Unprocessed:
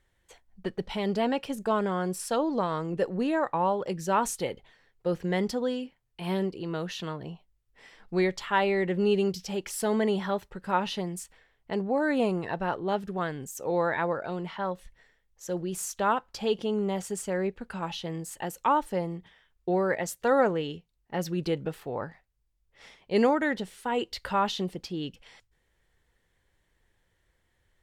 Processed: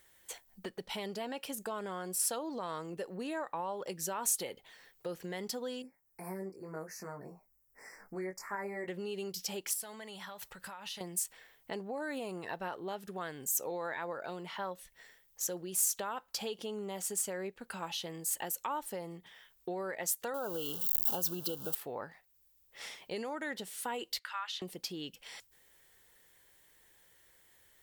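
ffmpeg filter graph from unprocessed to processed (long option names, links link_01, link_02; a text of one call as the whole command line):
ffmpeg -i in.wav -filter_complex "[0:a]asettb=1/sr,asplit=3[link_01][link_02][link_03];[link_01]atrim=end=5.824[link_04];[link_02]atrim=start=5.82:end=8.88,asetpts=PTS-STARTPTS,afade=type=in:duration=0.004:curve=qsin,afade=type=out:start_time=3.056:duration=0.004:curve=qsin,equalizer=frequency=4800:width_type=o:width=2.7:gain=-3.5,flanger=delay=19:depth=2.4:speed=1,asuperstop=centerf=3300:order=8:qfactor=1.2[link_05];[link_03]atrim=start=8.876[link_06];[link_04][link_05]acrossfade=duration=0.004:curve1=hsin:curve2=qsin[link_07];[link_07][link_06]acrossfade=duration=0.004:curve1=qsin:curve2=hsin,asettb=1/sr,asplit=3[link_08][link_09][link_10];[link_08]atrim=end=9.734[link_11];[link_09]atrim=start=9.73:end=11.01,asetpts=PTS-STARTPTS,afade=type=in:duration=0.004:curve=qsin,afade=type=out:start_time=1.276:duration=0.004:curve=qsin,equalizer=frequency=330:width=1:gain=-13.5,acompressor=threshold=-43dB:ratio=12:attack=3.2:release=140:knee=1:detection=peak[link_12];[link_10]atrim=start=11.006[link_13];[link_11][link_12]acrossfade=duration=0.004:curve1=hsin:curve2=qsin[link_14];[link_14][link_13]acrossfade=duration=0.004:curve1=qsin:curve2=hsin,asettb=1/sr,asplit=3[link_15][link_16][link_17];[link_15]atrim=end=20.344[link_18];[link_16]atrim=start=20.34:end=21.75,asetpts=PTS-STARTPTS,afade=type=in:duration=0.004:curve=qsin,afade=type=out:start_time=1.406:duration=0.004:curve=qsin,aeval=exprs='val(0)+0.5*0.0112*sgn(val(0))':channel_layout=same,asuperstop=centerf=2100:order=12:qfactor=1.8,highshelf=frequency=11000:gain=8.5[link_19];[link_17]atrim=start=21.746[link_20];[link_18][link_19]acrossfade=duration=0.004:curve1=hsin:curve2=qsin[link_21];[link_21][link_20]acrossfade=duration=0.004:curve1=qsin:curve2=hsin,asettb=1/sr,asplit=3[link_22][link_23][link_24];[link_22]atrim=end=24.194[link_25];[link_23]atrim=start=24.19:end=24.62,asetpts=PTS-STARTPTS,afade=type=in:duration=0.004:curve=qsin,afade=type=out:start_time=0.426:duration=0.004:curve=qsin,highpass=frequency=1300:width=0.5412,highpass=frequency=1300:width=1.3066,aemphasis=mode=reproduction:type=riaa[link_26];[link_24]atrim=start=24.616[link_27];[link_25][link_26]acrossfade=duration=0.004:curve1=hsin:curve2=qsin[link_28];[link_28][link_27]acrossfade=duration=0.004:curve1=qsin:curve2=hsin,alimiter=limit=-20.5dB:level=0:latency=1:release=105,acompressor=threshold=-50dB:ratio=2,aemphasis=mode=production:type=bsi,volume=5dB" out.wav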